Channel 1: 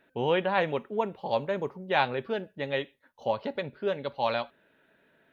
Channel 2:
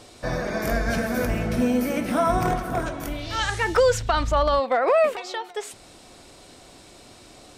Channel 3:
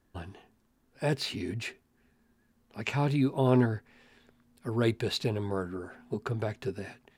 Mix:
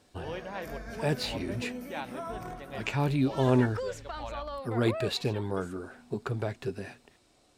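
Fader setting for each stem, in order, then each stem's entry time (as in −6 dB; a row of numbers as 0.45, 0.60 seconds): −13.5, −17.5, 0.0 decibels; 0.00, 0.00, 0.00 seconds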